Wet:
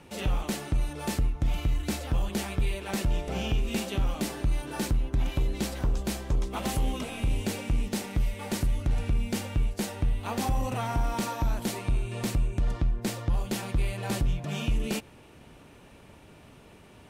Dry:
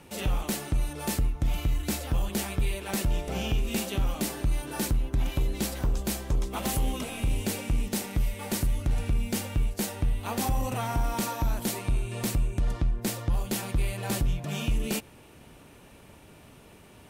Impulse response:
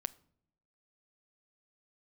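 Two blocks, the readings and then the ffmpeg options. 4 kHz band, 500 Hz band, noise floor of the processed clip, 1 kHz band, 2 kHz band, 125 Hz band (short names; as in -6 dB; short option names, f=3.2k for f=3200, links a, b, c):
-1.0 dB, 0.0 dB, -52 dBFS, 0.0 dB, -0.5 dB, 0.0 dB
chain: -af "highshelf=f=10k:g=-11.5"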